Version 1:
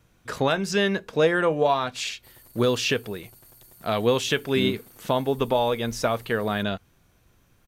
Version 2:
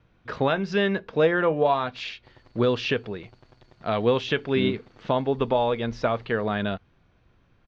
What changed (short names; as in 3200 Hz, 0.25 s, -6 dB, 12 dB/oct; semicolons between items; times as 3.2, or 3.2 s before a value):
background +3.5 dB; master: add Bessel low-pass 3000 Hz, order 8